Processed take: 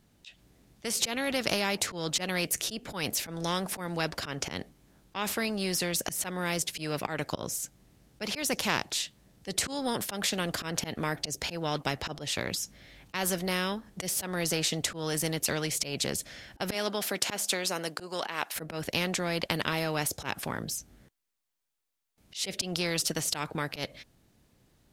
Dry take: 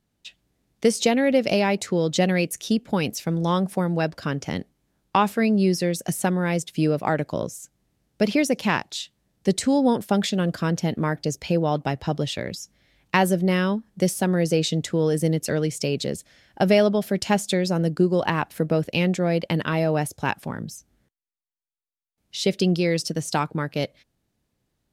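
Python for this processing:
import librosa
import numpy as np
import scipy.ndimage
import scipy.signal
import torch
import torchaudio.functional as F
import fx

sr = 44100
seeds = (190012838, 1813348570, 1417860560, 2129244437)

y = fx.highpass(x, sr, hz=fx.line((16.73, 250.0), (18.55, 720.0)), slope=12, at=(16.73, 18.55), fade=0.02)
y = fx.auto_swell(y, sr, attack_ms=164.0)
y = fx.spectral_comp(y, sr, ratio=2.0)
y = y * librosa.db_to_amplitude(-1.5)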